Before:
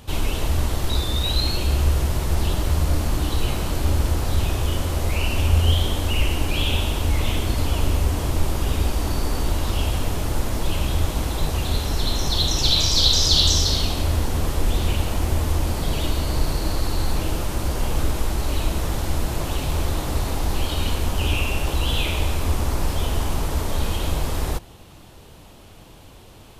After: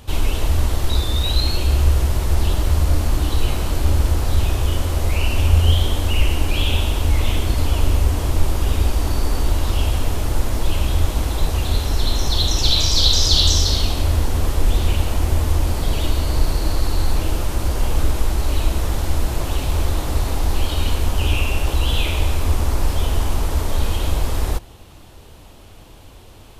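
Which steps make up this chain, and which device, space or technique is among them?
low shelf boost with a cut just above (bass shelf 110 Hz +4.5 dB; peaking EQ 160 Hz -4.5 dB 0.8 oct); trim +1 dB

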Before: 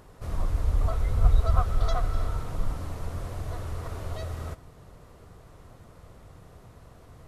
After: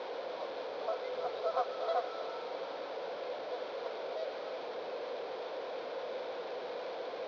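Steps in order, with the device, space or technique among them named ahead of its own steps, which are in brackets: digital answering machine (band-pass 390–3000 Hz; one-bit delta coder 32 kbps, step -36 dBFS; cabinet simulation 400–4000 Hz, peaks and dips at 510 Hz +10 dB, 1.2 kHz -9 dB, 1.9 kHz -8 dB, 2.8 kHz -8 dB); trim +1 dB

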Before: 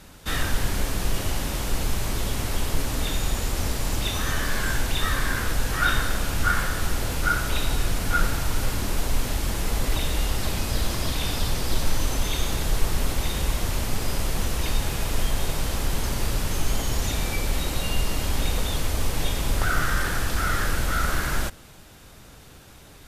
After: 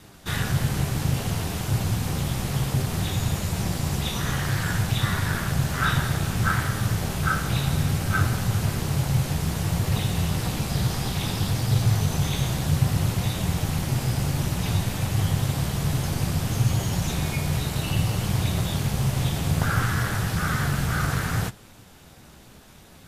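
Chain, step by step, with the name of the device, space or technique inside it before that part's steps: alien voice (ring modulator 120 Hz; flange 0.6 Hz, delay 9 ms, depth 6.3 ms, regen -38%); peaking EQ 780 Hz +3.5 dB 0.26 oct; trim +5 dB

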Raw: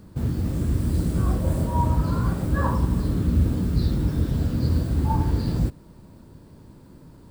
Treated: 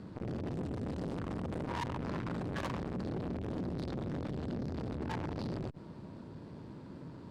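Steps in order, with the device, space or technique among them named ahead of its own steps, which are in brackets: valve radio (band-pass 110–4100 Hz; valve stage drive 36 dB, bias 0.6; transformer saturation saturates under 300 Hz); trim +4.5 dB

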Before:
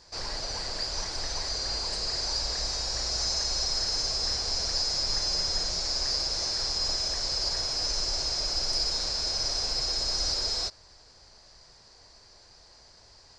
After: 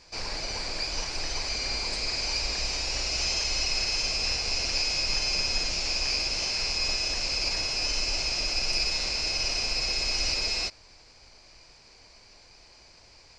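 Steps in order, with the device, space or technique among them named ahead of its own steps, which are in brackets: octave pedal (harmony voices -12 st -7 dB)

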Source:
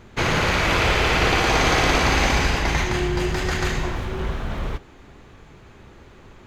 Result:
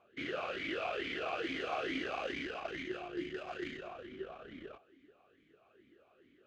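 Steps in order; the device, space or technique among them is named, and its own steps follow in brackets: talk box (valve stage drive 16 dB, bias 0.65; talking filter a-i 2.3 Hz); trim -2.5 dB

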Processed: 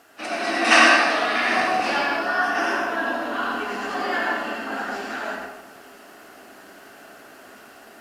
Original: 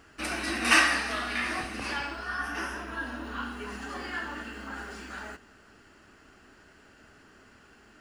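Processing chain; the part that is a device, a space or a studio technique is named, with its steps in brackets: filmed off a television (band-pass 250–6600 Hz; peaking EQ 700 Hz +11.5 dB 0.36 oct; reverberation RT60 0.80 s, pre-delay 79 ms, DRR -0.5 dB; white noise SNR 33 dB; level rider gain up to 6 dB; trim +1 dB; AAC 64 kbps 32 kHz)

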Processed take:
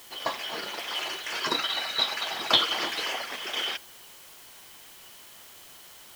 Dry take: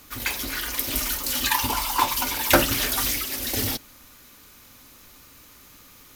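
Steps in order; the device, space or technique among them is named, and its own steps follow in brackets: split-band scrambled radio (four frequency bands reordered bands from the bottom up 2413; band-pass 340–3300 Hz; white noise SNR 18 dB)

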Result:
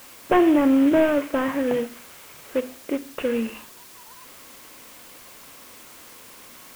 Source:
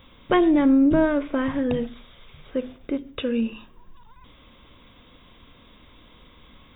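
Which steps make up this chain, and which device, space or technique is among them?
army field radio (band-pass 320–3100 Hz; CVSD coder 16 kbps; white noise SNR 22 dB); trim +4.5 dB

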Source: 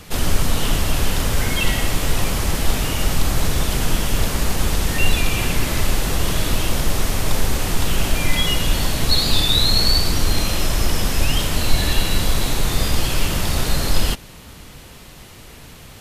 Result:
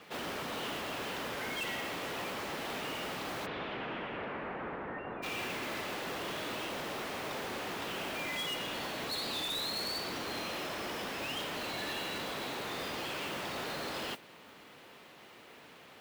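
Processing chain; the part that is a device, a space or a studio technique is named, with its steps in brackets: carbon microphone (band-pass 320–3100 Hz; saturation -24.5 dBFS, distortion -13 dB; modulation noise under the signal 14 dB); 3.45–5.22 s: low-pass 3.8 kHz -> 1.5 kHz 24 dB/octave; trim -8 dB

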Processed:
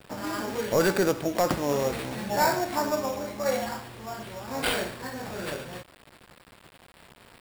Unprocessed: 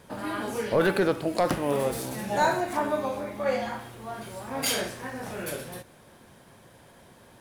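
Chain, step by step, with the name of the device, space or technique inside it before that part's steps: peaking EQ 72 Hz +4 dB 0.42 oct; early 8-bit sampler (sample-rate reducer 6.2 kHz, jitter 0%; bit crusher 8-bit)

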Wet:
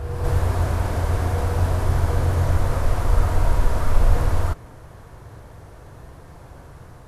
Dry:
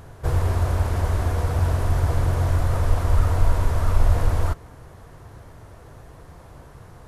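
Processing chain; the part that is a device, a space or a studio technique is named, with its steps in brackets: reverse reverb (reverse; reverberation RT60 1.8 s, pre-delay 41 ms, DRR 3.5 dB; reverse)

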